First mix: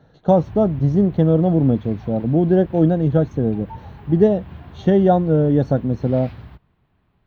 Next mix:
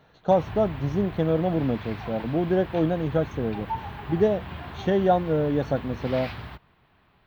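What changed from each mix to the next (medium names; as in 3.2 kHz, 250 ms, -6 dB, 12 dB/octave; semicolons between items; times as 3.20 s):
background +10.0 dB; master: add bass shelf 440 Hz -12 dB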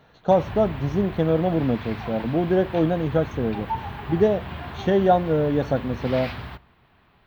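reverb: on, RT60 0.55 s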